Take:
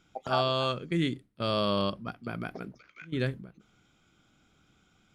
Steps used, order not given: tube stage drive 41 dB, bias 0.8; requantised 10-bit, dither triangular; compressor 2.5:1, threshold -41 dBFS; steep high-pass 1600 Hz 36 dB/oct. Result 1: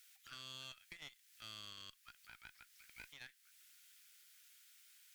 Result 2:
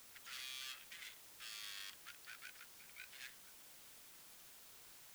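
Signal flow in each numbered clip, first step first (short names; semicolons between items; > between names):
requantised > compressor > steep high-pass > tube stage; tube stage > compressor > steep high-pass > requantised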